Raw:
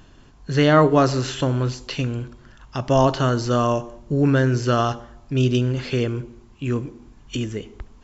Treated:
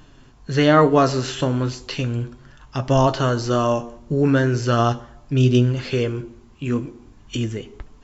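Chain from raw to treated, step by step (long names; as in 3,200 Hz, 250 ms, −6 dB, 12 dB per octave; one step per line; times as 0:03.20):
flanger 0.38 Hz, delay 6.5 ms, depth 6.6 ms, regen +57%
level +5 dB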